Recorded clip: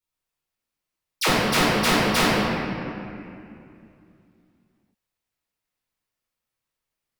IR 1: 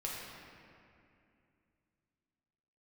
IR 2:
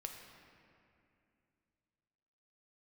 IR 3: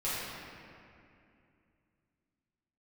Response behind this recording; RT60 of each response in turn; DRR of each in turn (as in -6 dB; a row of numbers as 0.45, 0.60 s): 3; 2.5, 2.6, 2.5 s; -5.0, 2.5, -12.0 dB